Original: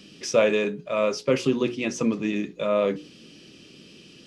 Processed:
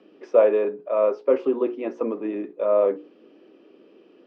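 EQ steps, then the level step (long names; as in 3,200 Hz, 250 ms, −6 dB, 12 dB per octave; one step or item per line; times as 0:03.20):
high-pass filter 320 Hz 24 dB per octave
Chebyshev low-pass filter 880 Hz, order 2
+4.0 dB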